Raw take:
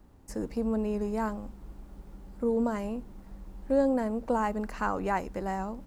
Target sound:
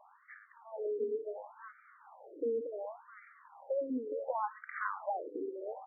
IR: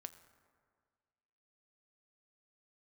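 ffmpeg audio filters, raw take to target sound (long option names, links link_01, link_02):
-filter_complex "[0:a]acompressor=threshold=-43dB:ratio=4,asplit=2[link_01][link_02];[link_02]adelay=419.8,volume=-8dB,highshelf=frequency=4000:gain=-9.45[link_03];[link_01][link_03]amix=inputs=2:normalize=0,asplit=2[link_04][link_05];[1:a]atrim=start_sample=2205,highshelf=frequency=3900:gain=12[link_06];[link_05][link_06]afir=irnorm=-1:irlink=0,volume=13dB[link_07];[link_04][link_07]amix=inputs=2:normalize=0,afftfilt=real='re*between(b*sr/1024,350*pow(1700/350,0.5+0.5*sin(2*PI*0.69*pts/sr))/1.41,350*pow(1700/350,0.5+0.5*sin(2*PI*0.69*pts/sr))*1.41)':imag='im*between(b*sr/1024,350*pow(1700/350,0.5+0.5*sin(2*PI*0.69*pts/sr))/1.41,350*pow(1700/350,0.5+0.5*sin(2*PI*0.69*pts/sr))*1.41)':win_size=1024:overlap=0.75"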